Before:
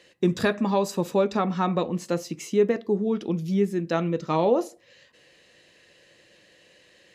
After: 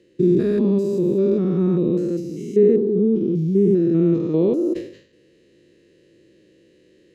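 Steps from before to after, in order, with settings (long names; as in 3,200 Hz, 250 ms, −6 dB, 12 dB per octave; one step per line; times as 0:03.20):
spectrum averaged block by block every 200 ms
low shelf with overshoot 540 Hz +13 dB, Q 3
level that may fall only so fast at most 110 dB per second
level −6.5 dB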